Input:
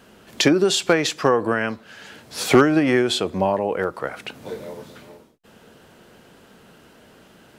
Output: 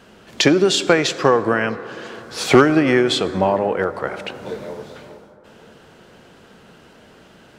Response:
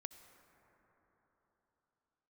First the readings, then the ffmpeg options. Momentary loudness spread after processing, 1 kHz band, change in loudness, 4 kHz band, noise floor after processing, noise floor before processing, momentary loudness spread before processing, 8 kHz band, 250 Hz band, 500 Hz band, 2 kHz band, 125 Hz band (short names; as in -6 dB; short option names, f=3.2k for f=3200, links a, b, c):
17 LU, +3.0 dB, +2.5 dB, +2.5 dB, -48 dBFS, -52 dBFS, 18 LU, +0.5 dB, +2.0 dB, +3.0 dB, +3.0 dB, +3.0 dB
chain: -filter_complex "[0:a]equalizer=f=270:t=o:w=0.45:g=-2,asplit=2[a][b];[1:a]atrim=start_sample=2205,lowpass=8.7k[c];[b][c]afir=irnorm=-1:irlink=0,volume=8dB[d];[a][d]amix=inputs=2:normalize=0,volume=-4.5dB"